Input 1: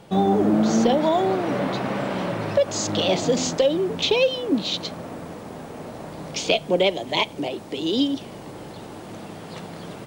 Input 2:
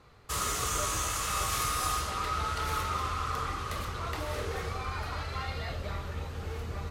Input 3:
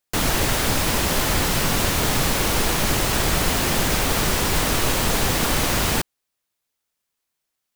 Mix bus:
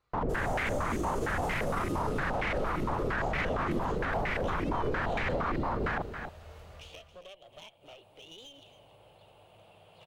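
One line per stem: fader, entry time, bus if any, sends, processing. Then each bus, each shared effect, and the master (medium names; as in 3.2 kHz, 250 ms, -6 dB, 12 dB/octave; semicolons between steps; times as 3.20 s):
-16.0 dB, 0.45 s, no send, echo send -14.5 dB, FFT filter 100 Hz 0 dB, 260 Hz -20 dB, 600 Hz +1 dB, 1.9 kHz -10 dB, 2.8 kHz +6 dB, 5.7 kHz -16 dB, 10 kHz -5 dB; compression 10:1, threshold -28 dBFS, peak gain reduction 13.5 dB; one-sided clip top -35 dBFS
-18.5 dB, 0.00 s, no send, echo send -7 dB, peak limiter -24.5 dBFS, peak gain reduction 6 dB; level rider gain up to 6.5 dB; peaking EQ 230 Hz -6.5 dB 2.3 oct
-3.0 dB, 0.00 s, no send, echo send -12.5 dB, peaking EQ 340 Hz -3 dB; peak limiter -16 dBFS, peak gain reduction 9.5 dB; step-sequenced low-pass 8.7 Hz 340–2100 Hz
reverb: none
echo: delay 274 ms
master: peak limiter -22.5 dBFS, peak gain reduction 7.5 dB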